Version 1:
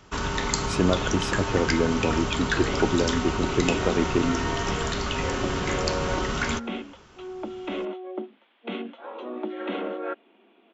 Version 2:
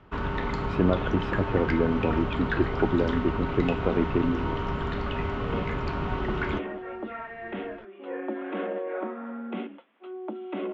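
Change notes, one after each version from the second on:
second sound: entry +2.85 s
master: add high-frequency loss of the air 480 metres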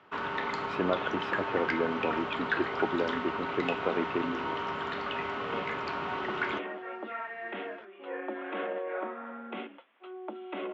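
master: add meter weighting curve A

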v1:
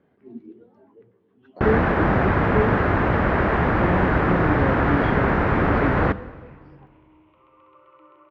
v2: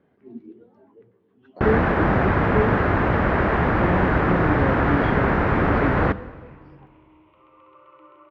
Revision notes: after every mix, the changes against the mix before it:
second sound: send +10.0 dB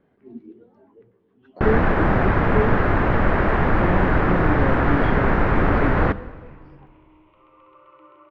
master: remove high-pass filter 53 Hz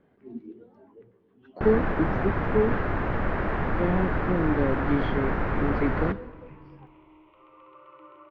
first sound −8.5 dB

